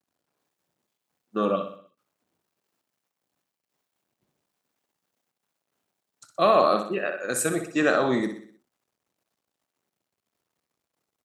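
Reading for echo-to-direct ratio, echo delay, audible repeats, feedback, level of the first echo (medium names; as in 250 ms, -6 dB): -8.0 dB, 62 ms, 5, 48%, -9.0 dB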